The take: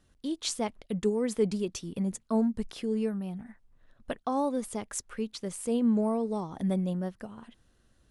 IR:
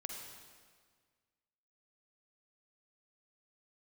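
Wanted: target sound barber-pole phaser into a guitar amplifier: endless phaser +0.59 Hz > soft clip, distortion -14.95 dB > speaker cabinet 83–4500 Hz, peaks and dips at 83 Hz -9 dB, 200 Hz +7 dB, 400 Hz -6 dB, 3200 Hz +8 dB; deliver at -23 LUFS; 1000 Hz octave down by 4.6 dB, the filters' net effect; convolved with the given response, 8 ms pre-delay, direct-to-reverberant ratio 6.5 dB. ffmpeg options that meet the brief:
-filter_complex "[0:a]equalizer=f=1k:t=o:g=-6,asplit=2[a][b];[1:a]atrim=start_sample=2205,adelay=8[c];[b][c]afir=irnorm=-1:irlink=0,volume=-5dB[d];[a][d]amix=inputs=2:normalize=0,asplit=2[e][f];[f]afreqshift=0.59[g];[e][g]amix=inputs=2:normalize=1,asoftclip=threshold=-26dB,highpass=83,equalizer=f=83:t=q:w=4:g=-9,equalizer=f=200:t=q:w=4:g=7,equalizer=f=400:t=q:w=4:g=-6,equalizer=f=3.2k:t=q:w=4:g=8,lowpass=f=4.5k:w=0.5412,lowpass=f=4.5k:w=1.3066,volume=10.5dB"

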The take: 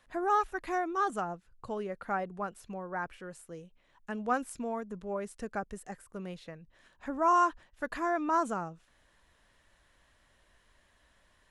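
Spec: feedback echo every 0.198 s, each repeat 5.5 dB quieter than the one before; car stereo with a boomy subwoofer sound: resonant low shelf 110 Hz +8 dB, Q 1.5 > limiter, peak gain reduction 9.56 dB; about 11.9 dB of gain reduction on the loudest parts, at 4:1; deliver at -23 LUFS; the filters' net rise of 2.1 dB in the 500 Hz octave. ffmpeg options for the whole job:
-af "equalizer=f=500:t=o:g=3.5,acompressor=threshold=-35dB:ratio=4,lowshelf=f=110:t=q:w=1.5:g=8,aecho=1:1:198|396|594|792|990|1188|1386:0.531|0.281|0.149|0.079|0.0419|0.0222|0.0118,volume=20dB,alimiter=limit=-13.5dB:level=0:latency=1"

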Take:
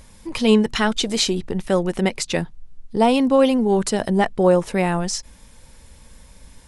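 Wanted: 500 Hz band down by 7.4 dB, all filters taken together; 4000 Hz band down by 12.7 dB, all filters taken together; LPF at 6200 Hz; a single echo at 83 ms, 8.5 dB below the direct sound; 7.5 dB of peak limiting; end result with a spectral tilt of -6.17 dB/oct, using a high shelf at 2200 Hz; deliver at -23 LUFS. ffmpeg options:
-af "lowpass=6.2k,equalizer=f=500:t=o:g=-8.5,highshelf=f=2.2k:g=-8.5,equalizer=f=4k:t=o:g=-8,alimiter=limit=-15.5dB:level=0:latency=1,aecho=1:1:83:0.376,volume=2.5dB"

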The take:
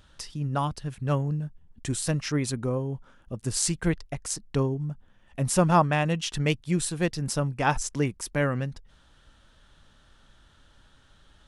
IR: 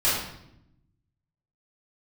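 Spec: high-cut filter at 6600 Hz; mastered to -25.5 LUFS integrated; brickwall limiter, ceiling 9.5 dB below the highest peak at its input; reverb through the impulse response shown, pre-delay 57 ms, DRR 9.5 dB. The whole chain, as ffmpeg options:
-filter_complex "[0:a]lowpass=6.6k,alimiter=limit=-18.5dB:level=0:latency=1,asplit=2[a][b];[1:a]atrim=start_sample=2205,adelay=57[c];[b][c]afir=irnorm=-1:irlink=0,volume=-24dB[d];[a][d]amix=inputs=2:normalize=0,volume=5dB"

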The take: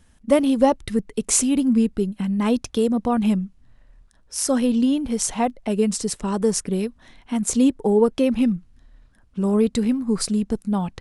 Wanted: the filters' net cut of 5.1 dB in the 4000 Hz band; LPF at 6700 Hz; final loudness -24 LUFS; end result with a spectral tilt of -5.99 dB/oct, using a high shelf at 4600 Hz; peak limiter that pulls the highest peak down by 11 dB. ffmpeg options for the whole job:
-af "lowpass=6.7k,equalizer=f=4k:t=o:g=-4.5,highshelf=f=4.6k:g=-3,volume=0.5dB,alimiter=limit=-15dB:level=0:latency=1"

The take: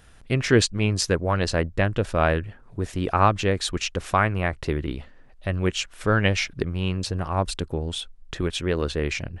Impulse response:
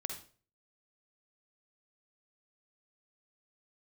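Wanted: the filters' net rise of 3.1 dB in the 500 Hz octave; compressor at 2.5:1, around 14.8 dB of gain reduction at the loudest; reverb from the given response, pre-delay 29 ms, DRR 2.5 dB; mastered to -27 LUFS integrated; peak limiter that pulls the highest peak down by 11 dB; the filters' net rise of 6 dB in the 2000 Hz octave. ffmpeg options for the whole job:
-filter_complex "[0:a]equalizer=f=500:t=o:g=3.5,equalizer=f=2k:t=o:g=7.5,acompressor=threshold=-34dB:ratio=2.5,alimiter=level_in=2dB:limit=-24dB:level=0:latency=1,volume=-2dB,asplit=2[a][b];[1:a]atrim=start_sample=2205,adelay=29[c];[b][c]afir=irnorm=-1:irlink=0,volume=-2.5dB[d];[a][d]amix=inputs=2:normalize=0,volume=8.5dB"

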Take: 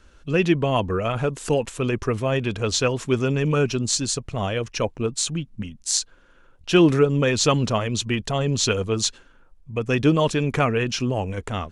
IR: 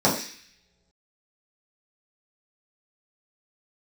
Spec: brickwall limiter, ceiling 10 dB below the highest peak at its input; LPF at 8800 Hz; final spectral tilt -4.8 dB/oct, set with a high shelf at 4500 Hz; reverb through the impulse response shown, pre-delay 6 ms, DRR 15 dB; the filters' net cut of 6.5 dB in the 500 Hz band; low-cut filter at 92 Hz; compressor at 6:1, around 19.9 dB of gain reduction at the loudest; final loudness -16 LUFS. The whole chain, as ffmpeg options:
-filter_complex "[0:a]highpass=92,lowpass=8.8k,equalizer=f=500:t=o:g=-8.5,highshelf=f=4.5k:g=-6.5,acompressor=threshold=-37dB:ratio=6,alimiter=level_in=6.5dB:limit=-24dB:level=0:latency=1,volume=-6.5dB,asplit=2[a][b];[1:a]atrim=start_sample=2205,adelay=6[c];[b][c]afir=irnorm=-1:irlink=0,volume=-33dB[d];[a][d]amix=inputs=2:normalize=0,volume=24.5dB"

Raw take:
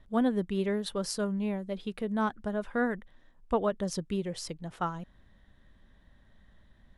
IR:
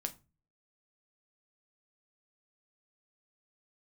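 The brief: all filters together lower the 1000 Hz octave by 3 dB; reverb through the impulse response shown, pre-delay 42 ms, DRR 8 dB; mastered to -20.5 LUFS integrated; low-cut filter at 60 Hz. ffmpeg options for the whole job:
-filter_complex "[0:a]highpass=60,equalizer=f=1k:t=o:g=-4,asplit=2[a][b];[1:a]atrim=start_sample=2205,adelay=42[c];[b][c]afir=irnorm=-1:irlink=0,volume=-7.5dB[d];[a][d]amix=inputs=2:normalize=0,volume=12dB"

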